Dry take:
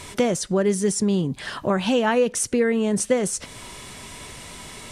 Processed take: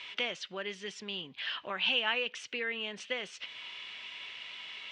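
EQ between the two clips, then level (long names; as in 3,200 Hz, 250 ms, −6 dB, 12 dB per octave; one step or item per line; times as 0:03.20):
resonant band-pass 2,900 Hz, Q 3.3
high-frequency loss of the air 180 metres
+7.0 dB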